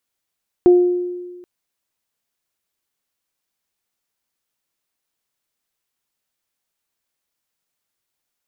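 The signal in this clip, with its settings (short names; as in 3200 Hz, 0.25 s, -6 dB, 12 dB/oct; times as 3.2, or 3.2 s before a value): additive tone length 0.78 s, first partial 356 Hz, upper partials -18 dB, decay 1.44 s, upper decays 0.65 s, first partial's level -5.5 dB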